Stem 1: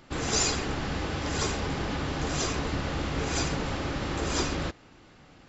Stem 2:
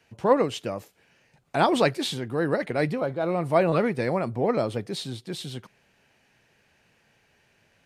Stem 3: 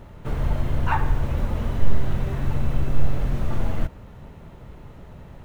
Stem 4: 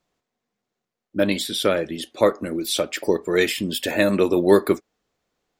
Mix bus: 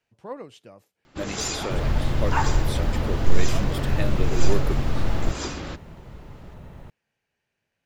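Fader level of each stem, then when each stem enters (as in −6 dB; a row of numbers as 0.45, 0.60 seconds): −3.0, −16.0, 0.0, −12.5 decibels; 1.05, 0.00, 1.45, 0.00 seconds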